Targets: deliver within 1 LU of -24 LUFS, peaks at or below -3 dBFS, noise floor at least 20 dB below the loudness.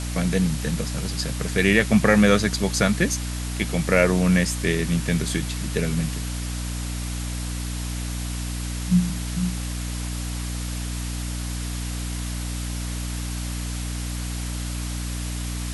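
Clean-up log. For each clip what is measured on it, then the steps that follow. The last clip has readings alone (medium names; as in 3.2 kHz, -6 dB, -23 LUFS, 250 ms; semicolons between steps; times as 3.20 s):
hum 60 Hz; highest harmonic 300 Hz; hum level -26 dBFS; noise floor -29 dBFS; noise floor target -45 dBFS; loudness -24.5 LUFS; peak level -2.0 dBFS; loudness target -24.0 LUFS
-> de-hum 60 Hz, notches 5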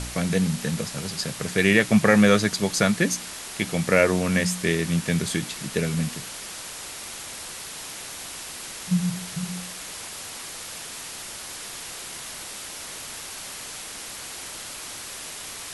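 hum not found; noise floor -37 dBFS; noise floor target -46 dBFS
-> noise reduction 9 dB, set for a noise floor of -37 dBFS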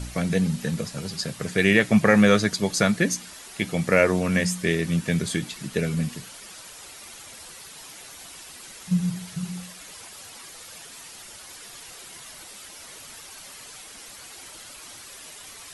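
noise floor -44 dBFS; loudness -23.0 LUFS; peak level -2.5 dBFS; loudness target -24.0 LUFS
-> trim -1 dB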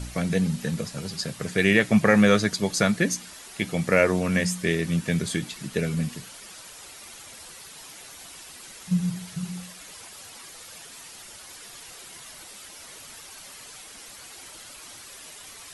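loudness -24.0 LUFS; peak level -3.5 dBFS; noise floor -45 dBFS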